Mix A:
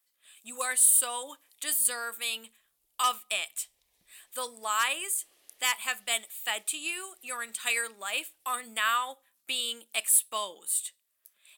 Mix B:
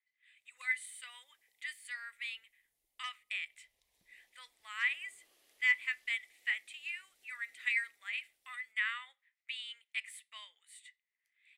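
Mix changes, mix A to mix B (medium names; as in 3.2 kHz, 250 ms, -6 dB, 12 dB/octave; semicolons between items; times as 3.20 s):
speech: add ladder band-pass 2.1 kHz, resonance 85%; background -4.0 dB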